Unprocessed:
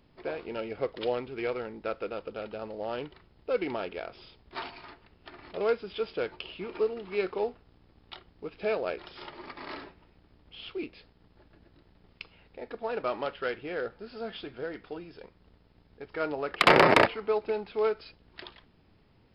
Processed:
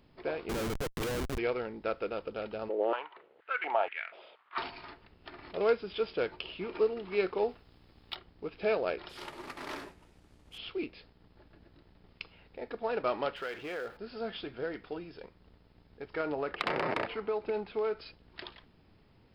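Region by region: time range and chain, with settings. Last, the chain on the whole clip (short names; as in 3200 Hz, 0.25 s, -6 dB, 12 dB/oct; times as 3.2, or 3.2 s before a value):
0.49–1.38 bell 2400 Hz +5.5 dB 0.44 oct + Schmitt trigger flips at -36 dBFS
2.69–4.58 LPF 3100 Hz 24 dB/oct + stepped high-pass 4.2 Hz 380–1900 Hz
7.49–8.15 median filter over 3 samples + high shelf 2300 Hz +8.5 dB
9.09–10.58 CVSD 64 kbps + Doppler distortion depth 0.25 ms
13.36–13.97 G.711 law mismatch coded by mu + low shelf 330 Hz -9.5 dB + compressor 2.5:1, threshold -35 dBFS
16.2–17.99 high shelf 6200 Hz -10 dB + compressor 16:1, threshold -27 dBFS
whole clip: dry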